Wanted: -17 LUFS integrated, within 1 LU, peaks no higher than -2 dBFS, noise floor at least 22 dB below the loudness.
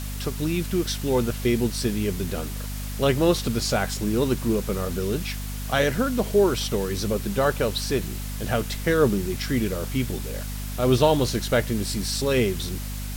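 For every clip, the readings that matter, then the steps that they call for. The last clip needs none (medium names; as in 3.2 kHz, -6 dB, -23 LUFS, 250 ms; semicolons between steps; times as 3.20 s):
hum 50 Hz; highest harmonic 250 Hz; hum level -29 dBFS; noise floor -32 dBFS; noise floor target -47 dBFS; loudness -24.5 LUFS; peak level -6.0 dBFS; loudness target -17.0 LUFS
-> de-hum 50 Hz, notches 5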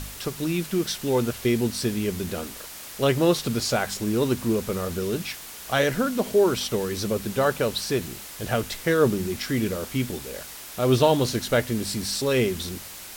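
hum not found; noise floor -40 dBFS; noise floor target -47 dBFS
-> noise print and reduce 7 dB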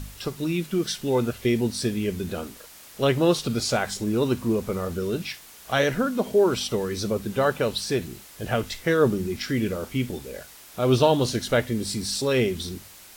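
noise floor -47 dBFS; loudness -25.0 LUFS; peak level -5.5 dBFS; loudness target -17.0 LUFS
-> trim +8 dB; peak limiter -2 dBFS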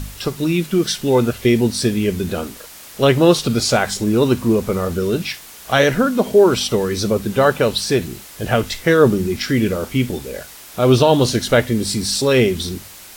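loudness -17.0 LUFS; peak level -2.0 dBFS; noise floor -39 dBFS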